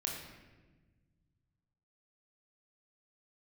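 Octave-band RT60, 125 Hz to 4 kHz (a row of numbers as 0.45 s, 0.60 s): 3.0 s, 2.2 s, 1.5 s, 1.1 s, 1.1 s, 0.90 s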